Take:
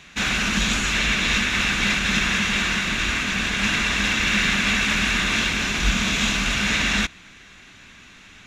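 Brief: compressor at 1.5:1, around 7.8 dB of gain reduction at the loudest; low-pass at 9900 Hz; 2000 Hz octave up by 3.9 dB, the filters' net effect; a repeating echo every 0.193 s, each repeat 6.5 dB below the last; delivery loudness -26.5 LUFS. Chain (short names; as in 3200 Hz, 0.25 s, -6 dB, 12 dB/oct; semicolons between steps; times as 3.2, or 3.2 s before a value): LPF 9900 Hz; bell 2000 Hz +5 dB; compressor 1.5:1, threshold -37 dBFS; feedback echo 0.193 s, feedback 47%, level -6.5 dB; gain -2.5 dB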